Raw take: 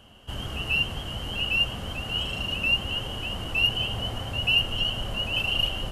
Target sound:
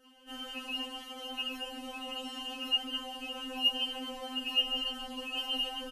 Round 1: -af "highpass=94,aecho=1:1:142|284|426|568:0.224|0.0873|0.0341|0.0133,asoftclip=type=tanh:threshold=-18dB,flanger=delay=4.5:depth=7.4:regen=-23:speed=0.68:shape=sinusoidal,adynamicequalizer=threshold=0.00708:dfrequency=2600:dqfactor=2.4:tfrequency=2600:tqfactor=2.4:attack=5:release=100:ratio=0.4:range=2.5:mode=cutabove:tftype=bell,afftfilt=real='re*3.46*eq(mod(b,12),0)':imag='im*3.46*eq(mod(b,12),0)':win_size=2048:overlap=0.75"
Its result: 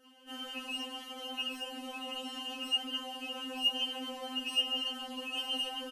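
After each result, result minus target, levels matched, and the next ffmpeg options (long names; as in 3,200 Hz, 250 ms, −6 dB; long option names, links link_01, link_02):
soft clipping: distortion +20 dB; 125 Hz band −4.0 dB
-af "highpass=94,aecho=1:1:142|284|426|568:0.224|0.0873|0.0341|0.0133,asoftclip=type=tanh:threshold=-6dB,flanger=delay=4.5:depth=7.4:regen=-23:speed=0.68:shape=sinusoidal,adynamicequalizer=threshold=0.00708:dfrequency=2600:dqfactor=2.4:tfrequency=2600:tqfactor=2.4:attack=5:release=100:ratio=0.4:range=2.5:mode=cutabove:tftype=bell,afftfilt=real='re*3.46*eq(mod(b,12),0)':imag='im*3.46*eq(mod(b,12),0)':win_size=2048:overlap=0.75"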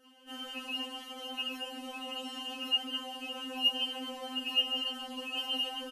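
125 Hz band −5.0 dB
-af "highpass=31,aecho=1:1:142|284|426|568:0.224|0.0873|0.0341|0.0133,asoftclip=type=tanh:threshold=-6dB,flanger=delay=4.5:depth=7.4:regen=-23:speed=0.68:shape=sinusoidal,adynamicequalizer=threshold=0.00708:dfrequency=2600:dqfactor=2.4:tfrequency=2600:tqfactor=2.4:attack=5:release=100:ratio=0.4:range=2.5:mode=cutabove:tftype=bell,afftfilt=real='re*3.46*eq(mod(b,12),0)':imag='im*3.46*eq(mod(b,12),0)':win_size=2048:overlap=0.75"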